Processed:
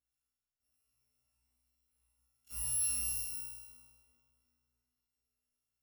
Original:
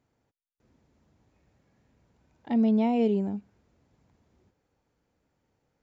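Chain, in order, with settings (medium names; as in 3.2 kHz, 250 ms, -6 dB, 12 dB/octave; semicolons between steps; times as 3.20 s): bit-reversed sample order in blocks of 256 samples; feedback comb 61 Hz, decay 1.3 s, harmonics all, mix 100%; on a send: filtered feedback delay 388 ms, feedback 36%, low-pass 2.4 kHz, level -9.5 dB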